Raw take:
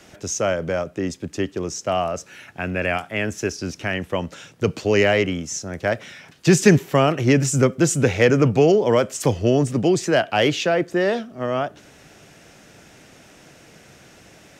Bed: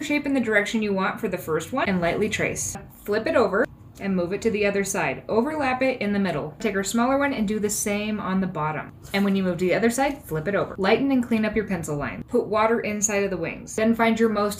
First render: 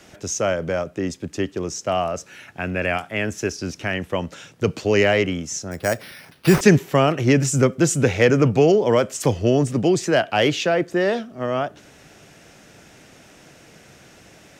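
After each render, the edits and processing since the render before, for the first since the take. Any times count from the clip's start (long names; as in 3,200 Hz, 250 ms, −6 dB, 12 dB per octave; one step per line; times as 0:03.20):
0:05.71–0:06.61: bad sample-rate conversion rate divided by 6×, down none, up hold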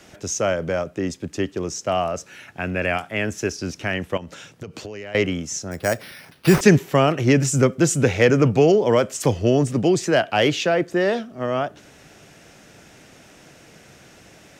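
0:04.17–0:05.15: downward compressor 16 to 1, threshold −30 dBFS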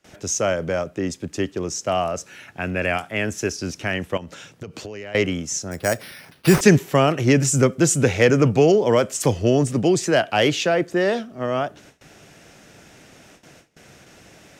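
dynamic equaliser 9,500 Hz, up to +4 dB, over −44 dBFS, Q 0.72
noise gate with hold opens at −38 dBFS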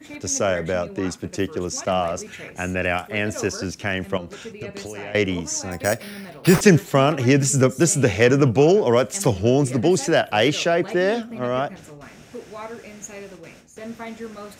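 mix in bed −14.5 dB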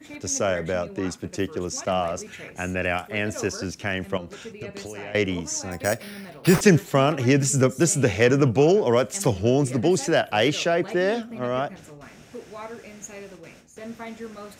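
level −2.5 dB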